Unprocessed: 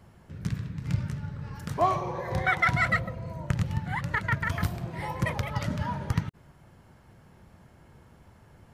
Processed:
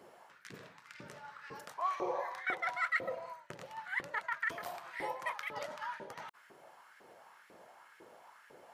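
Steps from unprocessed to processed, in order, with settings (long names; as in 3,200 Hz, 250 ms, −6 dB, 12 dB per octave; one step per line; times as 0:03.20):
reversed playback
downward compressor 6 to 1, threshold −35 dBFS, peak gain reduction 15.5 dB
reversed playback
auto-filter high-pass saw up 2 Hz 350–1,900 Hz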